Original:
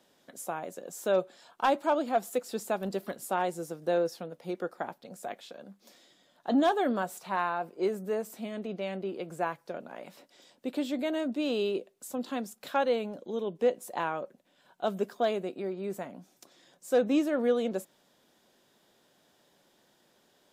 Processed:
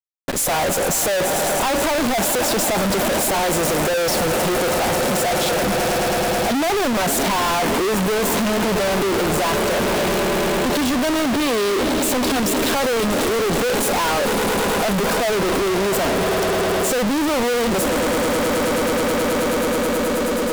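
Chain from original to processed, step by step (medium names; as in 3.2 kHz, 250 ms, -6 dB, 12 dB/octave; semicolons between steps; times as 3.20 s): waveshaping leveller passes 5; peaking EQ 410 Hz +2.5 dB 2.2 oct; echo with a slow build-up 107 ms, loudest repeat 8, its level -17.5 dB; fuzz box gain 43 dB, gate -46 dBFS; bass shelf 75 Hz +9 dB; saturation -18 dBFS, distortion -16 dB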